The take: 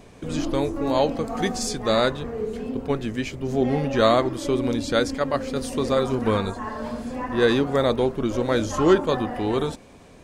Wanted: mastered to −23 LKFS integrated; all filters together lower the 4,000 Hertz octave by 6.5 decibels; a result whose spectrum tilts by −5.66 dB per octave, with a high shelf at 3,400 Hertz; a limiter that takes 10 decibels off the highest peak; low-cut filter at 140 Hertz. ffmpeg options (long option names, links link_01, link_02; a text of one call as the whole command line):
ffmpeg -i in.wav -af "highpass=140,highshelf=frequency=3400:gain=-6.5,equalizer=frequency=4000:width_type=o:gain=-3.5,volume=4dB,alimiter=limit=-11.5dB:level=0:latency=1" out.wav